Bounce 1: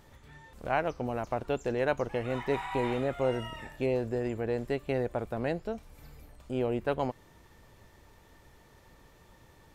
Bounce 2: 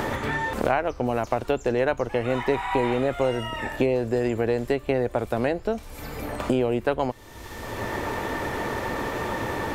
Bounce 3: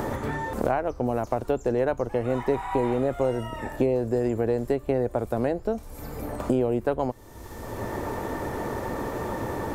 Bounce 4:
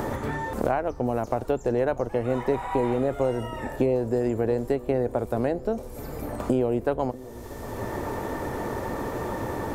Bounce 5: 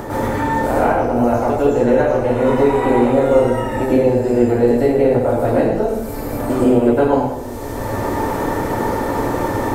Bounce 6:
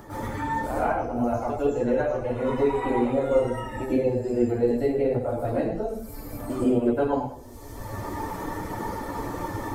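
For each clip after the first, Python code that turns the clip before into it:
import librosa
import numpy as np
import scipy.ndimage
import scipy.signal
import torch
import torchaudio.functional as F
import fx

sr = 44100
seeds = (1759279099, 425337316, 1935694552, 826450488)

y1 = fx.peak_eq(x, sr, hz=160.0, db=-11.5, octaves=0.32)
y1 = fx.band_squash(y1, sr, depth_pct=100)
y1 = y1 * 10.0 ** (7.0 / 20.0)
y2 = fx.peak_eq(y1, sr, hz=2800.0, db=-11.0, octaves=2.0)
y3 = fx.echo_wet_lowpass(y2, sr, ms=640, feedback_pct=73, hz=940.0, wet_db=-19)
y4 = fx.rev_plate(y3, sr, seeds[0], rt60_s=0.91, hf_ratio=0.9, predelay_ms=90, drr_db=-9.5)
y4 = y4 * 10.0 ** (1.0 / 20.0)
y5 = fx.bin_expand(y4, sr, power=1.5)
y5 = y5 * 10.0 ** (-6.5 / 20.0)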